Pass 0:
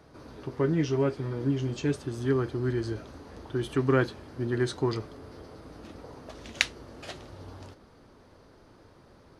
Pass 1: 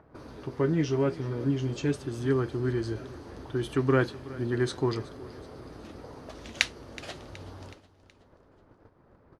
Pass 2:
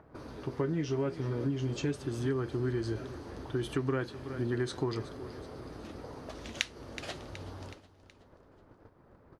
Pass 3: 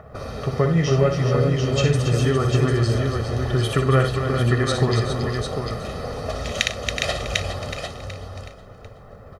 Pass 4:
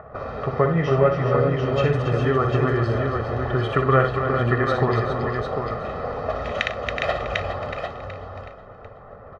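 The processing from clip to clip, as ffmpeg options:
-filter_complex "[0:a]agate=range=-25dB:threshold=-51dB:ratio=16:detection=peak,acrossover=split=2200[a][b];[a]acompressor=mode=upward:threshold=-41dB:ratio=2.5[c];[c][b]amix=inputs=2:normalize=0,aecho=1:1:372|744|1116|1488:0.112|0.0583|0.0303|0.0158"
-af "acompressor=threshold=-28dB:ratio=6"
-af "aecho=1:1:1.6:0.77,aecho=1:1:60|98|277|410|748:0.447|0.133|0.376|0.398|0.501,alimiter=level_in=12dB:limit=-1dB:release=50:level=0:latency=1"
-af "lowpass=1.1k,tiltshelf=f=680:g=-8.5,volume=4.5dB"

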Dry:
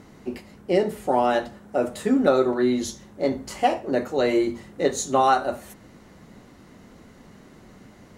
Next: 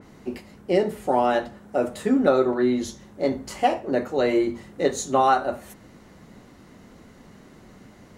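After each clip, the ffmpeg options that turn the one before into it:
-af "adynamicequalizer=threshold=0.00794:dfrequency=3400:dqfactor=0.7:tfrequency=3400:tqfactor=0.7:attack=5:release=100:ratio=0.375:range=3.5:mode=cutabove:tftype=highshelf"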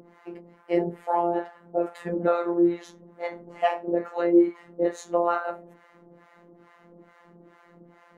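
-filter_complex "[0:a]acrossover=split=670[a][b];[a]aeval=exprs='val(0)*(1-1/2+1/2*cos(2*PI*2.3*n/s))':c=same[c];[b]aeval=exprs='val(0)*(1-1/2-1/2*cos(2*PI*2.3*n/s))':c=same[d];[c][d]amix=inputs=2:normalize=0,acrossover=split=240 2300:gain=0.126 1 0.126[e][f][g];[e][f][g]amix=inputs=3:normalize=0,afftfilt=real='hypot(re,im)*cos(PI*b)':imag='0':win_size=1024:overlap=0.75,volume=7.5dB"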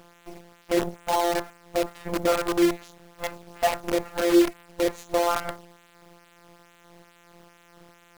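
-af "acrusher=bits=5:dc=4:mix=0:aa=0.000001"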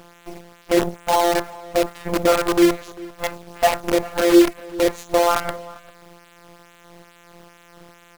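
-filter_complex "[0:a]asplit=2[a][b];[b]adelay=396.5,volume=-20dB,highshelf=f=4k:g=-8.92[c];[a][c]amix=inputs=2:normalize=0,volume=6dB"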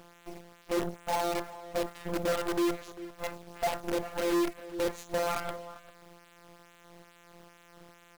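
-af "asoftclip=type=hard:threshold=-16.5dB,volume=-8dB"

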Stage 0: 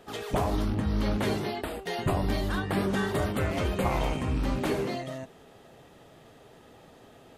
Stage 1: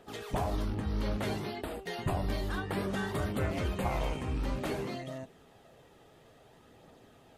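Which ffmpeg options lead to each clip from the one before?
-af "aphaser=in_gain=1:out_gain=1:delay=2.6:decay=0.25:speed=0.58:type=triangular,volume=-5.5dB"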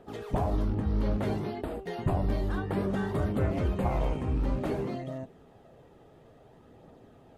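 -af "tiltshelf=f=1.4k:g=6.5,volume=-1.5dB"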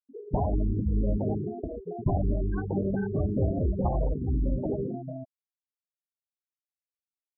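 -af "afftfilt=real='re*gte(hypot(re,im),0.0708)':imag='im*gte(hypot(re,im),0.0708)':win_size=1024:overlap=0.75,volume=2dB"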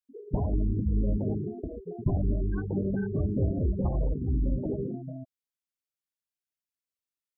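-af "equalizer=f=780:t=o:w=0.91:g=-10"

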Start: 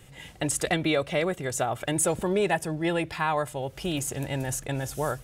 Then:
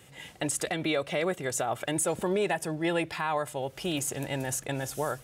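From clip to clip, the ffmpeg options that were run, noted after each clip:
-af "highpass=f=190:p=1,alimiter=limit=-18.5dB:level=0:latency=1:release=88"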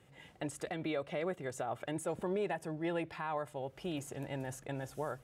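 -af "highshelf=f=2.9k:g=-12,volume=-7dB"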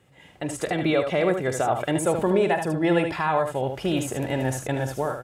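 -af "dynaudnorm=f=200:g=5:m=11dB,aecho=1:1:46|76:0.188|0.447,volume=3dB"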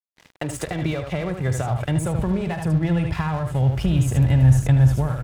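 -filter_complex "[0:a]asubboost=boost=9:cutoff=130,acrossover=split=150[a][b];[b]acompressor=threshold=-33dB:ratio=10[c];[a][c]amix=inputs=2:normalize=0,aeval=exprs='sgn(val(0))*max(abs(val(0))-0.00473,0)':c=same,volume=8.5dB"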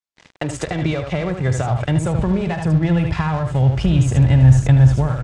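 -af "lowpass=f=8k:w=0.5412,lowpass=f=8k:w=1.3066,volume=4dB"

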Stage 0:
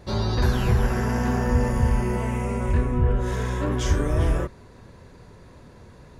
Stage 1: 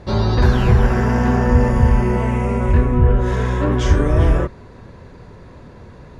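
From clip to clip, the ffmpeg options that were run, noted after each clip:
-af "aemphasis=mode=reproduction:type=50fm,volume=7dB"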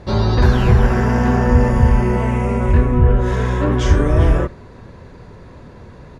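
-af "aecho=1:1:75:0.0668,volume=1dB"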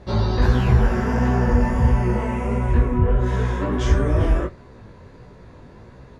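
-af "flanger=delay=15:depth=6.5:speed=1.5,volume=-2dB"

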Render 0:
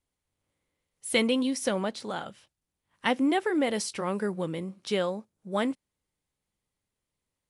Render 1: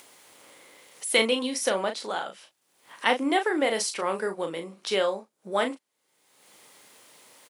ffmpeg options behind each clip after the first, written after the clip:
-filter_complex "[0:a]highpass=410,asplit=2[a][b];[b]adelay=36,volume=-7.5dB[c];[a][c]amix=inputs=2:normalize=0,acompressor=mode=upward:threshold=-35dB:ratio=2.5,volume=4dB"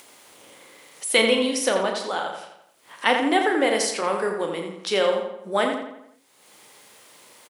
-filter_complex "[0:a]asplit=2[a][b];[b]adelay=85,lowpass=f=4k:p=1,volume=-5.5dB,asplit=2[c][d];[d]adelay=85,lowpass=f=4k:p=1,volume=0.5,asplit=2[e][f];[f]adelay=85,lowpass=f=4k:p=1,volume=0.5,asplit=2[g][h];[h]adelay=85,lowpass=f=4k:p=1,volume=0.5,asplit=2[i][j];[j]adelay=85,lowpass=f=4k:p=1,volume=0.5,asplit=2[k][l];[l]adelay=85,lowpass=f=4k:p=1,volume=0.5[m];[a][c][e][g][i][k][m]amix=inputs=7:normalize=0,volume=3dB"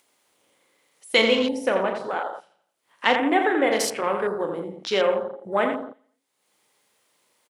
-af "afwtdn=0.0282"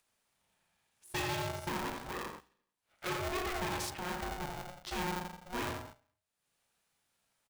-af "aeval=exprs='(tanh(17.8*val(0)+0.65)-tanh(0.65))/17.8':c=same,bandreject=f=60:t=h:w=6,bandreject=f=120:t=h:w=6,bandreject=f=180:t=h:w=6,bandreject=f=240:t=h:w=6,bandreject=f=300:t=h:w=6,bandreject=f=360:t=h:w=6,bandreject=f=420:t=h:w=6,aeval=exprs='val(0)*sgn(sin(2*PI*360*n/s))':c=same,volume=-8.5dB"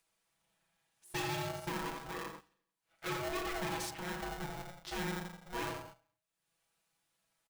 -af "aecho=1:1:6.1:0.69,volume=-3.5dB"

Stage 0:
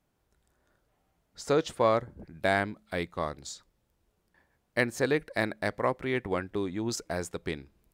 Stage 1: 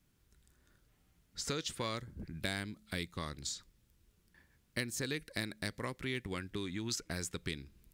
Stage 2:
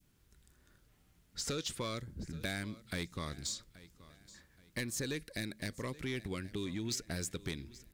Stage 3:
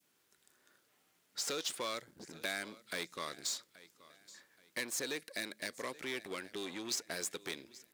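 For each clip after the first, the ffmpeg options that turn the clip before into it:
-filter_complex "[0:a]equalizer=f=700:t=o:w=1.7:g=-14.5,acrossover=split=1100|3200[a][b][c];[a]acompressor=threshold=-44dB:ratio=4[d];[b]acompressor=threshold=-51dB:ratio=4[e];[c]acompressor=threshold=-44dB:ratio=4[f];[d][e][f]amix=inputs=3:normalize=0,volume=5.5dB"
-af "adynamicequalizer=threshold=0.00178:dfrequency=1300:dqfactor=0.86:tfrequency=1300:tqfactor=0.86:attack=5:release=100:ratio=0.375:range=2.5:mode=cutabove:tftype=bell,asoftclip=type=tanh:threshold=-31dB,aecho=1:1:827|1654|2481:0.112|0.0415|0.0154,volume=2.5dB"
-af "aeval=exprs='0.0422*(cos(1*acos(clip(val(0)/0.0422,-1,1)))-cos(1*PI/2))+0.00335*(cos(8*acos(clip(val(0)/0.0422,-1,1)))-cos(8*PI/2))':c=same,highpass=410,volume=1.5dB"

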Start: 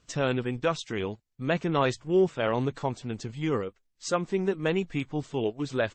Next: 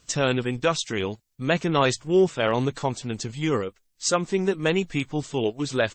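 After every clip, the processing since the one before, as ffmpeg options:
-af "highshelf=f=4.1k:g=11,volume=3.5dB"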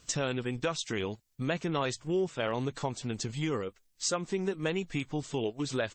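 -af "acompressor=threshold=-32dB:ratio=2.5"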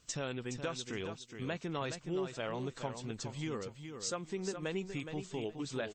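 -af "aecho=1:1:418|836|1254:0.398|0.0756|0.0144,volume=-7dB"

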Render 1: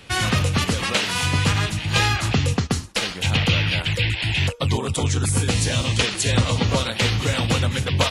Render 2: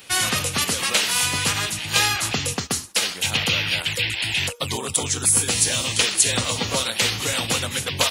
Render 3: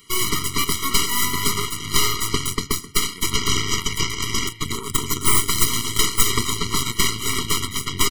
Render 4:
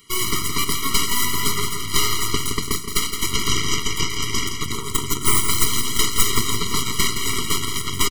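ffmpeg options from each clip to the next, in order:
-af "aemphasis=mode=production:type=bsi,volume=-1.5dB"
-filter_complex "[0:a]asplit=2[a][b];[b]adelay=261,lowpass=f=3.7k:p=1,volume=-12dB,asplit=2[c][d];[d]adelay=261,lowpass=f=3.7k:p=1,volume=0.45,asplit=2[e][f];[f]adelay=261,lowpass=f=3.7k:p=1,volume=0.45,asplit=2[g][h];[h]adelay=261,lowpass=f=3.7k:p=1,volume=0.45,asplit=2[i][j];[j]adelay=261,lowpass=f=3.7k:p=1,volume=0.45[k];[a][c][e][g][i][k]amix=inputs=6:normalize=0,aeval=exprs='0.891*(cos(1*acos(clip(val(0)/0.891,-1,1)))-cos(1*PI/2))+0.398*(cos(8*acos(clip(val(0)/0.891,-1,1)))-cos(8*PI/2))':c=same,afftfilt=real='re*eq(mod(floor(b*sr/1024/470),2),0)':imag='im*eq(mod(floor(b*sr/1024/470),2),0)':win_size=1024:overlap=0.75,volume=-2.5dB"
-af "aecho=1:1:168|336|504|672|840:0.422|0.198|0.0932|0.0438|0.0206,volume=-1dB"

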